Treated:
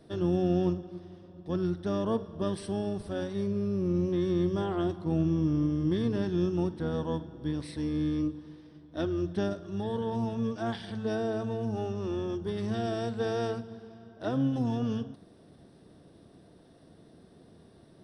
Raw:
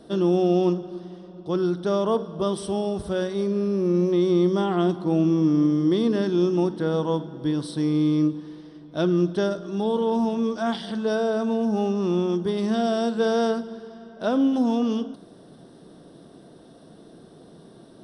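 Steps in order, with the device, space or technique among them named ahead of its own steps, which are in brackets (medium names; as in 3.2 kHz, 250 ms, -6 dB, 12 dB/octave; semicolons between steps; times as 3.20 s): octave pedal (harmony voices -12 st -4 dB); trim -9 dB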